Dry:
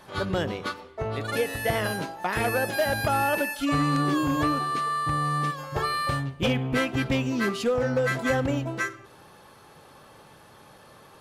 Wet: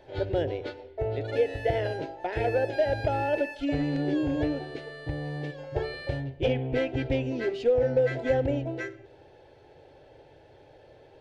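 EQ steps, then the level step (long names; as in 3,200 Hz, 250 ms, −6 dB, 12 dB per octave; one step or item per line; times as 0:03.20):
head-to-tape spacing loss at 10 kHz 32 dB
phaser with its sweep stopped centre 480 Hz, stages 4
+4.0 dB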